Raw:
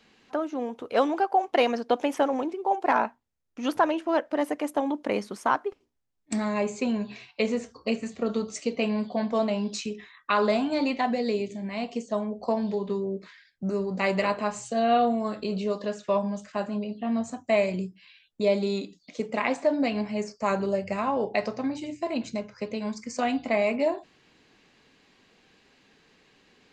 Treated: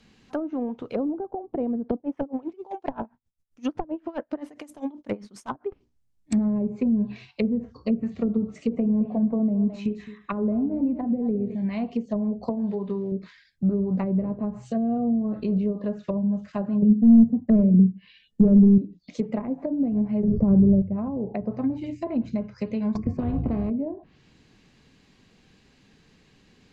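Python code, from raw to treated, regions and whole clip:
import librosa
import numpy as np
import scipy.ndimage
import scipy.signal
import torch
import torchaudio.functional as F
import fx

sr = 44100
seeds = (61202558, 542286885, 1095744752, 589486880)

y = fx.chain(x, sr, fx.high_shelf(hz=5600.0, db=4.5),
    fx.clip_hard(threshold_db=-15.5),
    fx.tremolo_db(hz=7.6, depth_db=23), at=(1.96, 5.66))
y = fx.chain(y, sr, fx.peak_eq(hz=5200.0, db=-8.5, octaves=1.1),
    fx.echo_multitap(ms=(64, 215), db=(-18.0, -13.5)), at=(8.47, 11.55))
y = fx.chain(y, sr, fx.quant_float(bits=4),
    fx.low_shelf(hz=190.0, db=-9.5), at=(12.49, 13.12))
y = fx.chain(y, sr, fx.small_body(hz=(220.0, 450.0, 1800.0, 2900.0), ring_ms=50, db=13),
    fx.clip_hard(threshold_db=-15.5), at=(16.82, 18.78))
y = fx.chain(y, sr, fx.tilt_eq(slope=-3.5),
    fx.pre_swell(db_per_s=29.0), at=(20.23, 20.82))
y = fx.chain(y, sr, fx.small_body(hz=(710.0, 1100.0, 2500.0), ring_ms=100, db=17),
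    fx.spectral_comp(ratio=4.0), at=(22.95, 23.7))
y = fx.env_lowpass_down(y, sr, base_hz=370.0, full_db=-22.5)
y = fx.bass_treble(y, sr, bass_db=14, treble_db=4)
y = y * 10.0 ** (-2.0 / 20.0)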